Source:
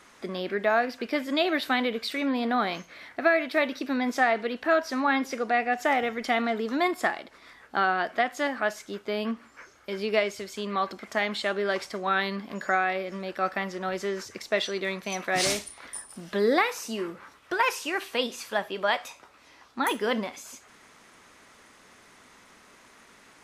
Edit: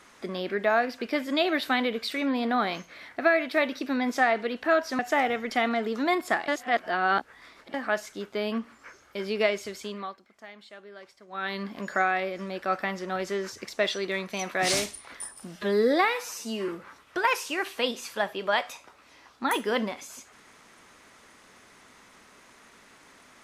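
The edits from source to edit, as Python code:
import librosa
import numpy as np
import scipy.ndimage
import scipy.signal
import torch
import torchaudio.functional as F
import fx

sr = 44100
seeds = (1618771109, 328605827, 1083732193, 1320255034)

y = fx.edit(x, sr, fx.cut(start_s=4.99, length_s=0.73),
    fx.reverse_span(start_s=7.21, length_s=1.26),
    fx.fade_down_up(start_s=10.49, length_s=1.92, db=-19.0, fade_s=0.41),
    fx.stretch_span(start_s=16.29, length_s=0.75, factor=1.5), tone=tone)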